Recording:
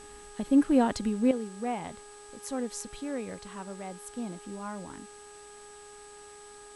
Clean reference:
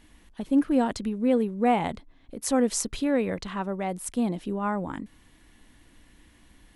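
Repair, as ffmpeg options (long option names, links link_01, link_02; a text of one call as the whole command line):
ffmpeg -i in.wav -af "bandreject=frequency=412.9:width_type=h:width=4,bandreject=frequency=825.8:width_type=h:width=4,bandreject=frequency=1238.7:width_type=h:width=4,bandreject=frequency=1651.6:width_type=h:width=4,bandreject=frequency=8000:width=30,afwtdn=0.002,asetnsamples=nb_out_samples=441:pad=0,asendcmd='1.31 volume volume 10.5dB',volume=0dB" out.wav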